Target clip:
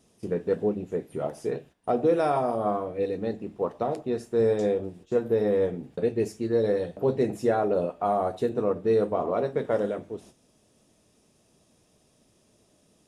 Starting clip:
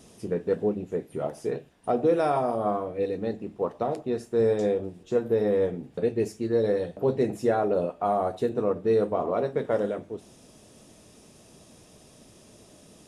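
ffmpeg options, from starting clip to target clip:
ffmpeg -i in.wav -af "agate=range=-11dB:threshold=-48dB:ratio=16:detection=peak" out.wav

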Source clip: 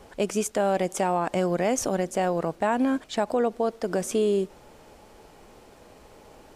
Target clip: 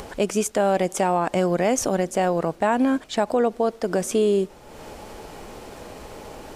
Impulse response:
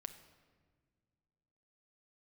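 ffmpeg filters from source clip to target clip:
-af "acompressor=mode=upward:threshold=-33dB:ratio=2.5,volume=3.5dB"

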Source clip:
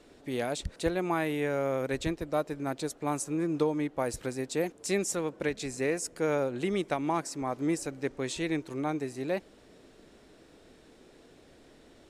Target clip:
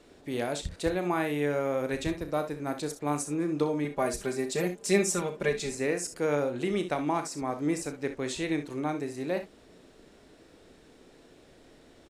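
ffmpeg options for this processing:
ffmpeg -i in.wav -filter_complex "[0:a]asettb=1/sr,asplit=3[link_01][link_02][link_03];[link_01]atrim=end=3.844[link_04];[link_02]atrim=start=3.84:end=5.75,asetpts=PTS-STARTPTS,afade=type=in:duration=0.004:curve=qsin,afade=type=out:start_time=1.906:duration=0.004:curve=qsin,aecho=1:1:5:0.89,atrim=end_sample=84231[link_05];[link_03]atrim=start=5.746[link_06];[link_04][link_05]acrossfade=duration=0.004:curve1=hsin:curve2=qsin[link_07];[link_07][link_06]acrossfade=duration=0.004:curve1=qsin:curve2=hsin,aecho=1:1:34|62|73:0.299|0.251|0.15" out.wav

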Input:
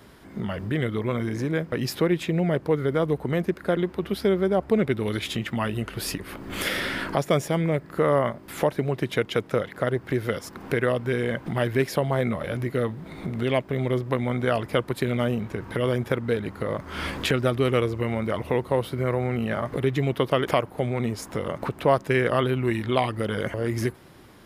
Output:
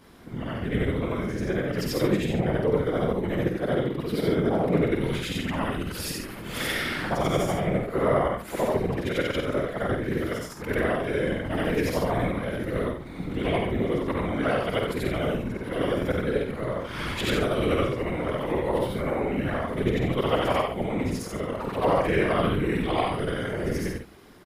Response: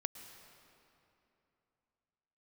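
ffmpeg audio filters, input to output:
-af "afftfilt=real='re':imag='-im':win_size=8192:overlap=0.75,afftfilt=real='hypot(re,im)*cos(2*PI*random(0))':imag='hypot(re,im)*sin(2*PI*random(1))':win_size=512:overlap=0.75,aecho=1:1:50|66:0.501|0.224,volume=8.5dB"

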